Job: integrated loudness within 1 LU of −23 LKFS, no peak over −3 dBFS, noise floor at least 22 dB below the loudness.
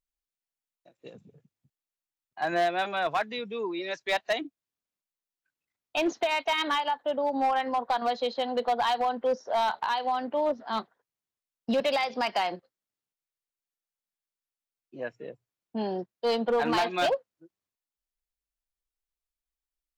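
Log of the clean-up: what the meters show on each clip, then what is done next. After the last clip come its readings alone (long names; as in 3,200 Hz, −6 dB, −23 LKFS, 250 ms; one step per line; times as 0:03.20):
share of clipped samples 1.0%; peaks flattened at −20.5 dBFS; integrated loudness −28.5 LKFS; sample peak −20.5 dBFS; target loudness −23.0 LKFS
→ clipped peaks rebuilt −20.5 dBFS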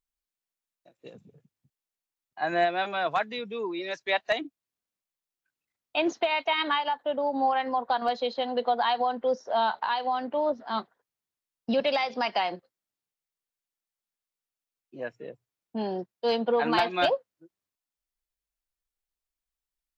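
share of clipped samples 0.0%; integrated loudness −28.0 LKFS; sample peak −11.5 dBFS; target loudness −23.0 LKFS
→ level +5 dB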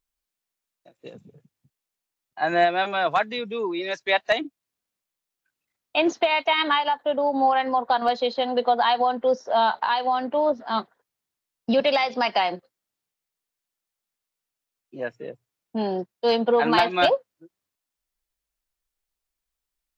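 integrated loudness −23.0 LKFS; sample peak −6.5 dBFS; background noise floor −86 dBFS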